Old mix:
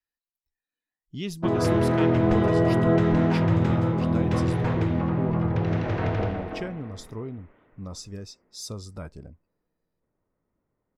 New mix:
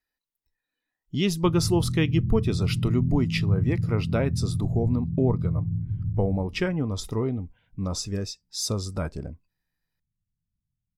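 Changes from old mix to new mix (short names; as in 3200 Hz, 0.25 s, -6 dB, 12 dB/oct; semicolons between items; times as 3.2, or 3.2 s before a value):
speech +8.5 dB; background: add inverse Chebyshev band-stop 650–6100 Hz, stop band 70 dB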